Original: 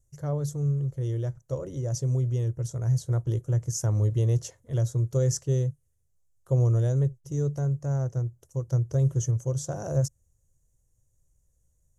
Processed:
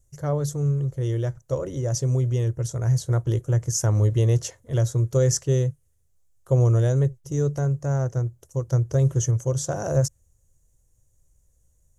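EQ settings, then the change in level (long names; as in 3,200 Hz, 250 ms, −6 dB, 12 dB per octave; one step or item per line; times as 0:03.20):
dynamic equaliser 2,000 Hz, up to +4 dB, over −49 dBFS, Q 0.72
parametric band 140 Hz −3 dB 1.1 octaves
+6.0 dB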